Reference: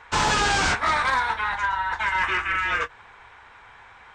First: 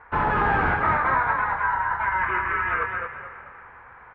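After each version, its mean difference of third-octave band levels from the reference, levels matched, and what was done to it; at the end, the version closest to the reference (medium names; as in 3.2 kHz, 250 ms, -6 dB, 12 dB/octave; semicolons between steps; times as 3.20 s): 7.5 dB: low-pass 1.8 kHz 24 dB/octave; frequency-shifting echo 218 ms, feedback 33%, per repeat +31 Hz, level -4.5 dB; spring tank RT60 3.7 s, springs 35/54 ms, chirp 55 ms, DRR 13 dB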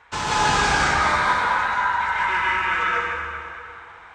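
5.0 dB: high-pass 43 Hz; two-band feedback delay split 950 Hz, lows 91 ms, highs 238 ms, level -11 dB; plate-style reverb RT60 2.4 s, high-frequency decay 0.5×, pre-delay 110 ms, DRR -6 dB; trim -5 dB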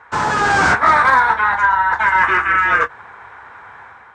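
3.5 dB: level rider gain up to 7 dB; high-pass 92 Hz 12 dB/octave; resonant high shelf 2.1 kHz -8 dB, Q 1.5; trim +2.5 dB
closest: third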